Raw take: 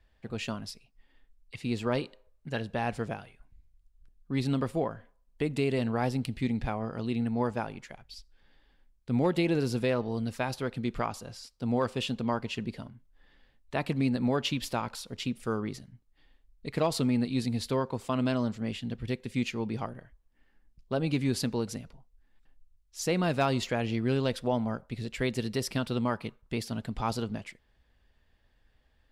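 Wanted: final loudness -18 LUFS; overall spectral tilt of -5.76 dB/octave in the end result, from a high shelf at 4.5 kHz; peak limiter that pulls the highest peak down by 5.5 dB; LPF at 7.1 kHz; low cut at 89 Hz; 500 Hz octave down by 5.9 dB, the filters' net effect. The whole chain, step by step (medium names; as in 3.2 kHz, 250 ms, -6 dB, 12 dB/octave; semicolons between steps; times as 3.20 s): high-pass 89 Hz; low-pass 7.1 kHz; peaking EQ 500 Hz -7.5 dB; treble shelf 4.5 kHz -8.5 dB; trim +17.5 dB; peak limiter -6 dBFS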